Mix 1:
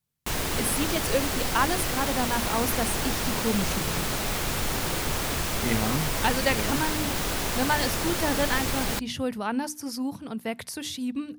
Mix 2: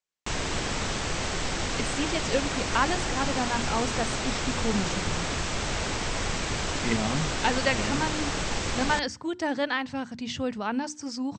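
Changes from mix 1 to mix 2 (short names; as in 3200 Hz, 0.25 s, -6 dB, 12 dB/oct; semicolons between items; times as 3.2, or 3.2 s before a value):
speech: entry +1.20 s; master: add Chebyshev low-pass 8000 Hz, order 6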